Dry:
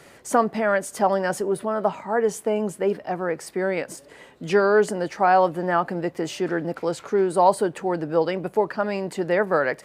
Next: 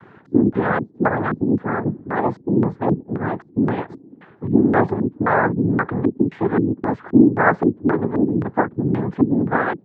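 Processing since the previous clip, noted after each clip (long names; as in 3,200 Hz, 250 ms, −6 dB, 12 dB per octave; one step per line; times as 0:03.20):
low shelf with overshoot 390 Hz +7.5 dB, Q 1.5
cochlear-implant simulation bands 6
auto-filter low-pass square 1.9 Hz 290–1,500 Hz
level −1 dB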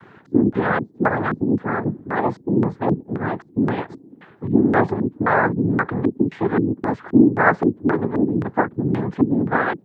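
high-shelf EQ 2,900 Hz +8.5 dB
level −1 dB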